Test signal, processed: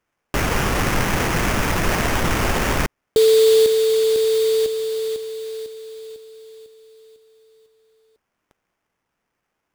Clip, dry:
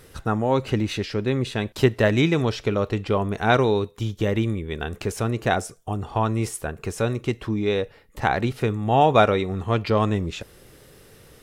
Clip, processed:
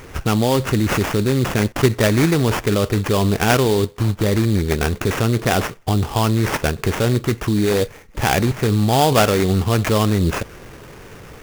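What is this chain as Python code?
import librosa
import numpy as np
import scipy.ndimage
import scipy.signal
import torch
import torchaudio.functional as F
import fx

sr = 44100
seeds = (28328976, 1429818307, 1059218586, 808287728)

p1 = fx.peak_eq(x, sr, hz=740.0, db=-3.5, octaves=1.7)
p2 = fx.over_compress(p1, sr, threshold_db=-27.0, ratio=-0.5)
p3 = p1 + F.gain(torch.from_numpy(p2), -1.0).numpy()
p4 = fx.sample_hold(p3, sr, seeds[0], rate_hz=4100.0, jitter_pct=20)
y = F.gain(torch.from_numpy(p4), 3.5).numpy()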